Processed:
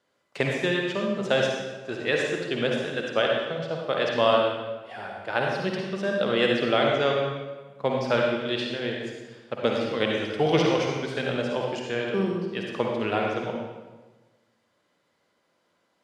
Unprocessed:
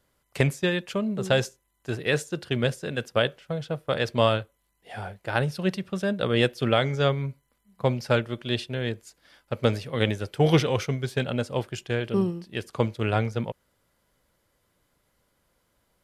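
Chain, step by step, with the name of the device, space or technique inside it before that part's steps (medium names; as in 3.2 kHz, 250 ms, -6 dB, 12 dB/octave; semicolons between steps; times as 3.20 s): supermarket ceiling speaker (band-pass 240–5700 Hz; reverberation RT60 1.3 s, pre-delay 47 ms, DRR -0.5 dB); trim -1 dB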